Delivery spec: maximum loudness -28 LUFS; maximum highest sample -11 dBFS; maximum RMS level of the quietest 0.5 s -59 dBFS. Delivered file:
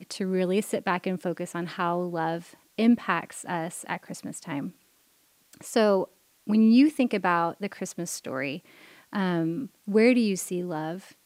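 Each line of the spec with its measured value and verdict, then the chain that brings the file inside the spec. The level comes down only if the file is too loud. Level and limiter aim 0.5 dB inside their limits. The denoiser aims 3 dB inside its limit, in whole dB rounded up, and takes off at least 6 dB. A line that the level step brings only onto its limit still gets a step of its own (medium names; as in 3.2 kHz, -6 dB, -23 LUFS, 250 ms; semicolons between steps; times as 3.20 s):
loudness -26.5 LUFS: fail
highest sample -8.0 dBFS: fail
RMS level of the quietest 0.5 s -64 dBFS: pass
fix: trim -2 dB; peak limiter -11.5 dBFS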